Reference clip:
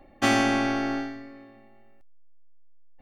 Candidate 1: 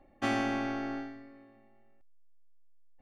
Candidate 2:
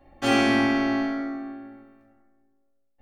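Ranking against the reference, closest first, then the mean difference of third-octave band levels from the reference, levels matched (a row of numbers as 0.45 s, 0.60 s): 1, 2; 1.5 dB, 3.5 dB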